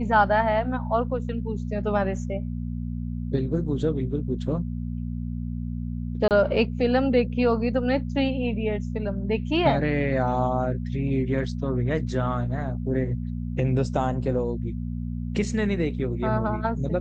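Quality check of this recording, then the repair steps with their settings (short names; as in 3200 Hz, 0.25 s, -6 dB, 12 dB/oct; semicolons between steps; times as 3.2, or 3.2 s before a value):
hum 60 Hz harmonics 4 -30 dBFS
6.28–6.31 gap 28 ms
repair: de-hum 60 Hz, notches 4; interpolate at 6.28, 28 ms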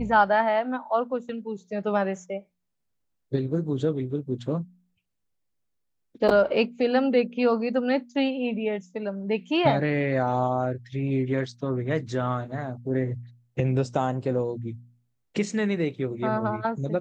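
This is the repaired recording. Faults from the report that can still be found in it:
none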